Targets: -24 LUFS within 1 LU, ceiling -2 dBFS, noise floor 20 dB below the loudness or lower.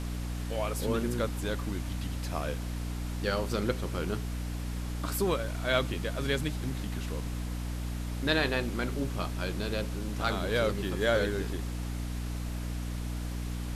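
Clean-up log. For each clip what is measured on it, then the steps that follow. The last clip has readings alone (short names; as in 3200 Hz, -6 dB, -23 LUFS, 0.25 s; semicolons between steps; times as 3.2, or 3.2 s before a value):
hum 60 Hz; harmonics up to 300 Hz; hum level -32 dBFS; noise floor -35 dBFS; noise floor target -53 dBFS; loudness -32.5 LUFS; peak -12.0 dBFS; loudness target -24.0 LUFS
-> notches 60/120/180/240/300 Hz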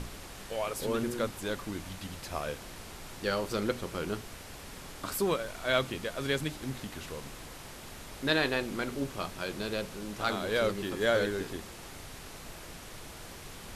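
hum none; noise floor -47 dBFS; noise floor target -53 dBFS
-> noise print and reduce 6 dB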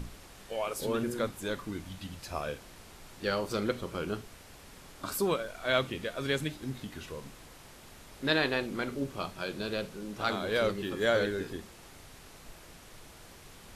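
noise floor -52 dBFS; noise floor target -54 dBFS
-> noise print and reduce 6 dB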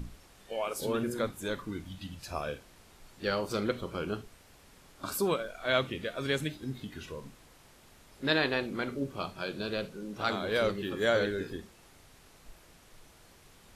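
noise floor -58 dBFS; loudness -33.0 LUFS; peak -12.0 dBFS; loudness target -24.0 LUFS
-> gain +9 dB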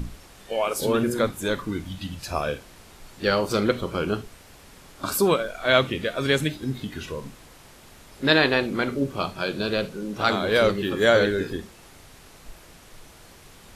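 loudness -24.0 LUFS; peak -3.0 dBFS; noise floor -49 dBFS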